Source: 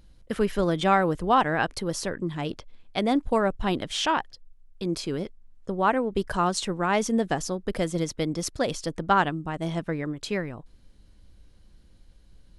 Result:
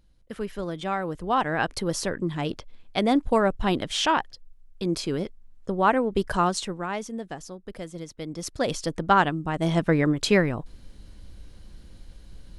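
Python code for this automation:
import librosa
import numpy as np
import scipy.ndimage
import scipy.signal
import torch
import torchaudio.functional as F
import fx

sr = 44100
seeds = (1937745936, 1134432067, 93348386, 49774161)

y = fx.gain(x, sr, db=fx.line((0.96, -7.5), (1.8, 2.0), (6.41, 2.0), (7.11, -10.0), (8.13, -10.0), (8.71, 2.0), (9.37, 2.0), (9.98, 9.0)))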